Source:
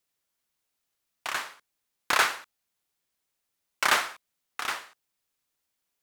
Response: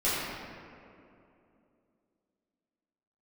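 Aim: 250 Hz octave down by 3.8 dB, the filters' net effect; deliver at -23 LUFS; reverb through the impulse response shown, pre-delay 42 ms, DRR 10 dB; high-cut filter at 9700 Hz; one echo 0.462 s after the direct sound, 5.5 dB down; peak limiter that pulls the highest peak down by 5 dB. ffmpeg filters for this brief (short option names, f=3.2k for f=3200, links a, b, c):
-filter_complex "[0:a]lowpass=9.7k,equalizer=f=250:t=o:g=-5.5,alimiter=limit=-13.5dB:level=0:latency=1,aecho=1:1:462:0.531,asplit=2[a][b];[1:a]atrim=start_sample=2205,adelay=42[c];[b][c]afir=irnorm=-1:irlink=0,volume=-22dB[d];[a][d]amix=inputs=2:normalize=0,volume=8dB"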